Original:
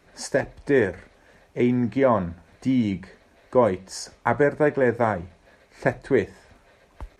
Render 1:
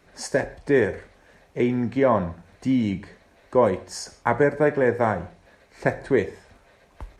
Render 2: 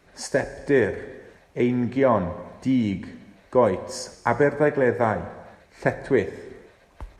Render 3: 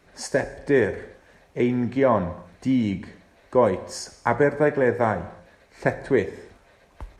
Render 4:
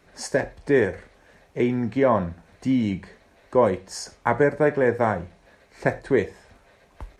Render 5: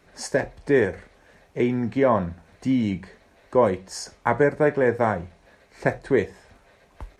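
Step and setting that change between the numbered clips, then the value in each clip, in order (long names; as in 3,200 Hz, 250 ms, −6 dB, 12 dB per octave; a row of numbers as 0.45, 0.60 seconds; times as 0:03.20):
reverb whose tail is shaped and stops, gate: 200, 510, 330, 130, 90 milliseconds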